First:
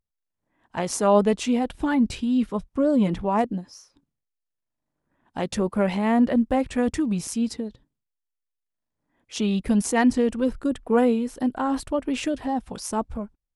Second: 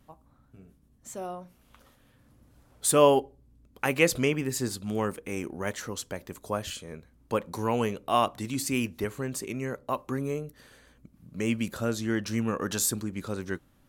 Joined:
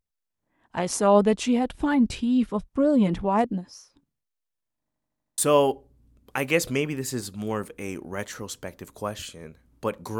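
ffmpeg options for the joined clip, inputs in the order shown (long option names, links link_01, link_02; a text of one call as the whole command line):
ffmpeg -i cue0.wav -i cue1.wav -filter_complex "[0:a]apad=whole_dur=10.19,atrim=end=10.19,asplit=7[link_01][link_02][link_03][link_04][link_05][link_06][link_07];[link_01]atrim=end=4.902[link_08];[link_02]atrim=start=4.818:end=4.902[link_09];[link_03]atrim=start=4.818:end=4.902[link_10];[link_04]atrim=start=4.818:end=4.902[link_11];[link_05]atrim=start=4.818:end=4.902[link_12];[link_06]atrim=start=4.818:end=4.902[link_13];[link_07]atrim=start=4.818:end=4.902[link_14];[1:a]atrim=start=2.858:end=7.67[link_15];[link_08][link_09]acrossfade=duration=0.004:curve1=hsin:curve2=hsin[link_16];[link_16][link_10]acrossfade=duration=0.004:curve1=hsin:curve2=hsin[link_17];[link_17][link_11]acrossfade=duration=0.004:curve1=hsin:curve2=hsin[link_18];[link_18][link_12]acrossfade=duration=0.004:curve1=hsin:curve2=hsin[link_19];[link_19][link_13]acrossfade=duration=0.004:curve1=hsin:curve2=hsin[link_20];[link_20][link_14]acrossfade=duration=0.004:curve1=hsin:curve2=hsin[link_21];[link_21][link_15]acrossfade=duration=0.004:curve1=hsin:curve2=hsin" out.wav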